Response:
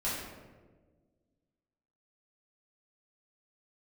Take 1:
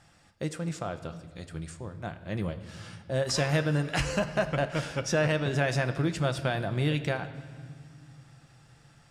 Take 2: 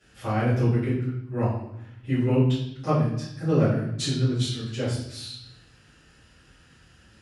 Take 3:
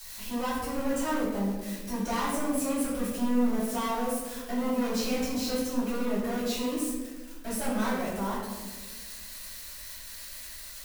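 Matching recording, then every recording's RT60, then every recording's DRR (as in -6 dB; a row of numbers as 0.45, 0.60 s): 3; not exponential, 0.75 s, 1.4 s; 8.0, -15.0, -10.5 dB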